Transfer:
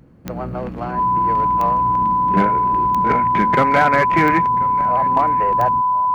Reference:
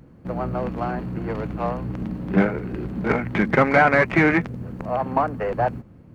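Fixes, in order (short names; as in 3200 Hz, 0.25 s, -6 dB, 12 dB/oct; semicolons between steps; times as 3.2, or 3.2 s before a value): clip repair -7 dBFS; de-click; notch 1000 Hz, Q 30; inverse comb 1.035 s -19.5 dB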